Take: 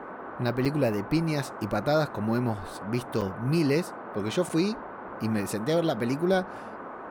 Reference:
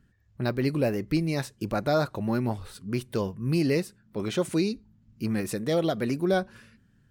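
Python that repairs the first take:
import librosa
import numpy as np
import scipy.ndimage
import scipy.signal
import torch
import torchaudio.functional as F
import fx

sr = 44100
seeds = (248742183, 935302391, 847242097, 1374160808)

y = fx.notch(x, sr, hz=1500.0, q=30.0)
y = fx.fix_interpolate(y, sr, at_s=(0.65, 3.21, 4.49), length_ms=6.5)
y = fx.noise_reduce(y, sr, print_start_s=6.58, print_end_s=7.08, reduce_db=21.0)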